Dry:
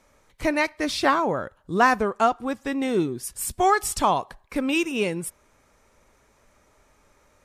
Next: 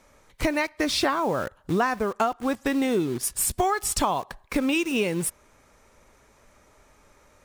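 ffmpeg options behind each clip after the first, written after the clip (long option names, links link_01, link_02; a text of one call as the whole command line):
ffmpeg -i in.wav -filter_complex "[0:a]asplit=2[link_01][link_02];[link_02]acrusher=bits=5:mix=0:aa=0.000001,volume=-5dB[link_03];[link_01][link_03]amix=inputs=2:normalize=0,acompressor=threshold=-24dB:ratio=6,volume=3dB" out.wav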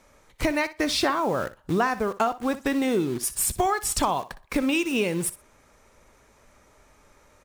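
ffmpeg -i in.wav -af "aecho=1:1:61|122:0.168|0.0252" out.wav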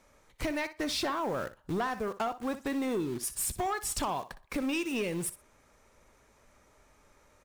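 ffmpeg -i in.wav -af "asoftclip=type=tanh:threshold=-19.5dB,volume=-5.5dB" out.wav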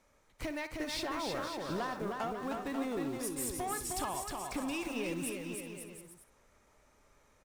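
ffmpeg -i in.wav -af "aecho=1:1:310|542.5|716.9|847.7|945.7:0.631|0.398|0.251|0.158|0.1,volume=-6dB" out.wav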